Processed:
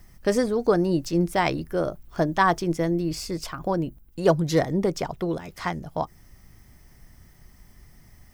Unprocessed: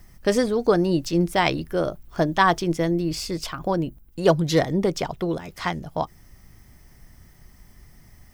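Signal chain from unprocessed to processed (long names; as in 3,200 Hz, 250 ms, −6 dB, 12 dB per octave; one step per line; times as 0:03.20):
dynamic equaliser 3,300 Hz, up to −6 dB, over −45 dBFS, Q 1.5
level −1.5 dB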